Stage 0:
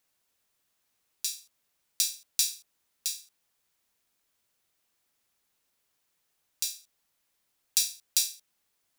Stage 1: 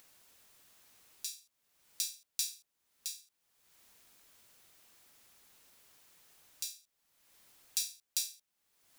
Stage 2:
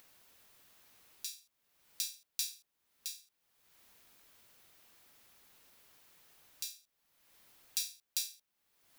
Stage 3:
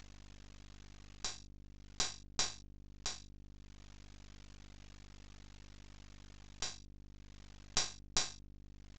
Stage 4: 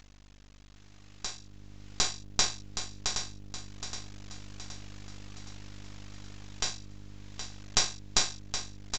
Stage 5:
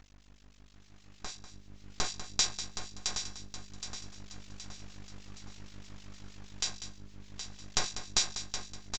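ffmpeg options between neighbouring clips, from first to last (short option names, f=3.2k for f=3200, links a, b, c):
-af "acompressor=mode=upward:threshold=-37dB:ratio=2.5,volume=-8.5dB"
-af "equalizer=f=7.8k:t=o:w=1.2:g=-4.5,volume=1dB"
-af "aeval=exprs='val(0)+0.00126*(sin(2*PI*50*n/s)+sin(2*PI*2*50*n/s)/2+sin(2*PI*3*50*n/s)/3+sin(2*PI*4*50*n/s)/4+sin(2*PI*5*50*n/s)/5)':c=same,aresample=16000,aeval=exprs='max(val(0),0)':c=same,aresample=44100,volume=7dB"
-filter_complex "[0:a]asplit=2[a][b];[b]aecho=0:1:770|1540|2310|3080|3850:0.355|0.163|0.0751|0.0345|0.0159[c];[a][c]amix=inputs=2:normalize=0,dynaudnorm=f=420:g=7:m=9.5dB"
-filter_complex "[0:a]acrossover=split=2100[a][b];[a]aeval=exprs='val(0)*(1-0.7/2+0.7/2*cos(2*PI*6.4*n/s))':c=same[c];[b]aeval=exprs='val(0)*(1-0.7/2-0.7/2*cos(2*PI*6.4*n/s))':c=same[d];[c][d]amix=inputs=2:normalize=0,aecho=1:1:195:0.251"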